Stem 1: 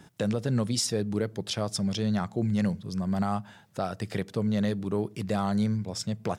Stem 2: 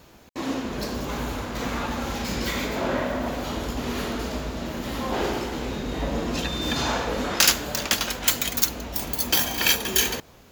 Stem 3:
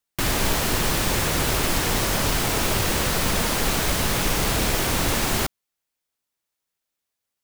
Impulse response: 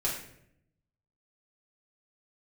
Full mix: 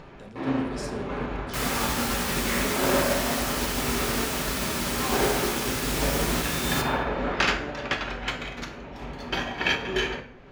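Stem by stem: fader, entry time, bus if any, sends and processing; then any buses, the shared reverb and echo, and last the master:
-13.5 dB, 0.00 s, send -7 dB, dry
-3.0 dB, 0.00 s, send -3.5 dB, Chebyshev low-pass 2100 Hz, order 2; upward compressor, threshold -32 dBFS
-7.5 dB, 1.35 s, send -5 dB, HPF 930 Hz 24 dB/oct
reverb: on, RT60 0.70 s, pre-delay 5 ms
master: upward expander 1.5:1, over -33 dBFS

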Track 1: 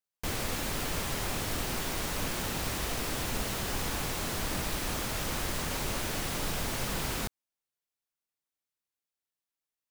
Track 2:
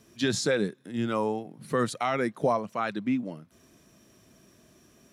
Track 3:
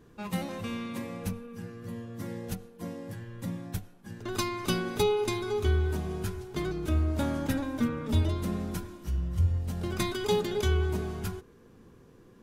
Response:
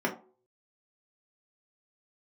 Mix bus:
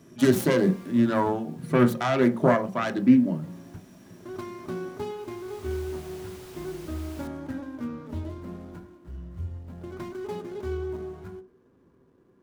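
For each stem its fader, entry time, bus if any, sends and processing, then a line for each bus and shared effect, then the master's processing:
-14.5 dB, 0.00 s, no send, auto duck -14 dB, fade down 1.45 s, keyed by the second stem
-3.0 dB, 0.00 s, send -8.5 dB, self-modulated delay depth 0.22 ms; bell 130 Hz +12.5 dB 1.3 oct
-8.0 dB, 0.00 s, send -15.5 dB, median filter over 15 samples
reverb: on, pre-delay 3 ms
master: HPF 46 Hz

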